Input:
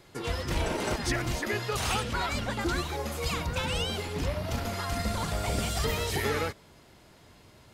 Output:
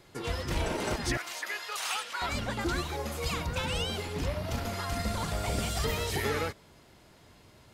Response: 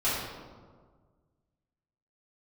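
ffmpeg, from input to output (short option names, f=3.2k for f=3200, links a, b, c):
-filter_complex "[0:a]asettb=1/sr,asplit=3[a][b][c];[a]atrim=end=1.174[d];[b]atrim=start=1.17:end=2.22,asetpts=PTS-STARTPTS,afade=t=in:d=0.004:c=qsin,afade=t=out:st=1.046:d=0.004:c=qsin,highpass=950[e];[c]atrim=start=2.216[f];[d][e]acrossfade=d=0.004:c1=hsin:c2=qsin[g];[g][f]acrossfade=d=0.004:c1=qsin:c2=hsin,volume=-1.5dB"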